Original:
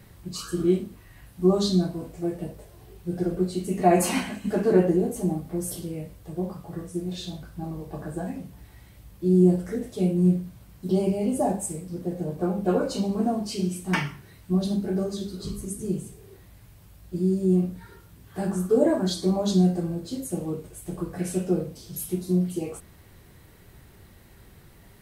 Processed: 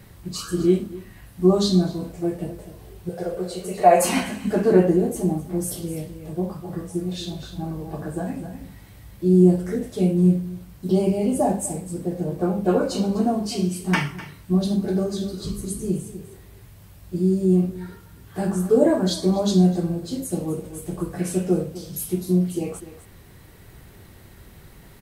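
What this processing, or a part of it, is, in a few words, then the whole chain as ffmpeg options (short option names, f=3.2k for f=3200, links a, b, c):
ducked delay: -filter_complex "[0:a]asettb=1/sr,asplit=3[a][b][c];[a]atrim=end=3.094[d];[b]atrim=start=3.09:end=4.05,asetpts=PTS-STARTPTS,afade=t=in:d=0.004:c=qsin,afade=t=out:st=0.956:d=0.004:c=qsin,lowshelf=f=390:t=q:w=3:g=-8[e];[c]atrim=start=4.046[f];[d][e]acrossfade=d=0.004:c1=hsin:c2=qsin[g];[g][f]acrossfade=d=0.004:c1=qsin:c2=hsin,asplit=3[h][i][j];[i]adelay=251,volume=-4.5dB[k];[j]apad=whole_len=1114233[l];[k][l]sidechaincompress=threshold=-32dB:ratio=8:attack=16:release=1420[m];[h][m]amix=inputs=2:normalize=0,volume=3.5dB"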